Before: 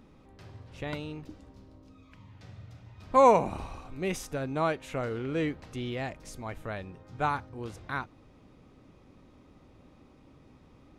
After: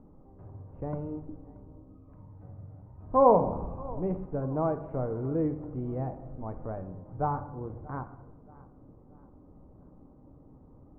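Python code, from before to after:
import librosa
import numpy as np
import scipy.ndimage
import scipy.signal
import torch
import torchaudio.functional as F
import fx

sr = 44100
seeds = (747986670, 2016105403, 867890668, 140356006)

p1 = scipy.signal.sosfilt(scipy.signal.butter(4, 1000.0, 'lowpass', fs=sr, output='sos'), x)
p2 = fx.low_shelf(p1, sr, hz=120.0, db=4.0)
p3 = p2 + fx.echo_feedback(p2, sr, ms=629, feedback_pct=41, wet_db=-21.5, dry=0)
y = fx.room_shoebox(p3, sr, seeds[0], volume_m3=340.0, walls='mixed', distance_m=0.45)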